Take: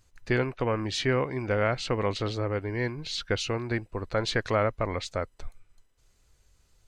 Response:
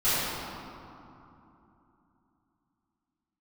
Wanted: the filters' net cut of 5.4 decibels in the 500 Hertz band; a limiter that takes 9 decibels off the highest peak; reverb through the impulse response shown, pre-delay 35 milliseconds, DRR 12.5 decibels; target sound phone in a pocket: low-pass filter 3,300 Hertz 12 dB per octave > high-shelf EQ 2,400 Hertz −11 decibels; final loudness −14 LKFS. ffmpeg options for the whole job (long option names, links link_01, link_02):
-filter_complex "[0:a]equalizer=frequency=500:width_type=o:gain=-6,alimiter=limit=-23.5dB:level=0:latency=1,asplit=2[link_01][link_02];[1:a]atrim=start_sample=2205,adelay=35[link_03];[link_02][link_03]afir=irnorm=-1:irlink=0,volume=-27.5dB[link_04];[link_01][link_04]amix=inputs=2:normalize=0,lowpass=3300,highshelf=frequency=2400:gain=-11,volume=22.5dB"